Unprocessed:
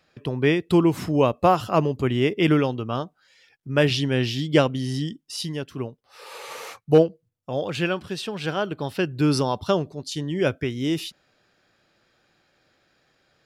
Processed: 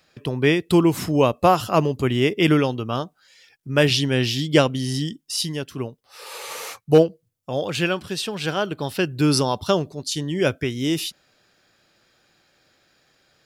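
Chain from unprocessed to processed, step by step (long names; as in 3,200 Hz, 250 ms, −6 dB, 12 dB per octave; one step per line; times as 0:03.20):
high-shelf EQ 4,500 Hz +9 dB
level +1.5 dB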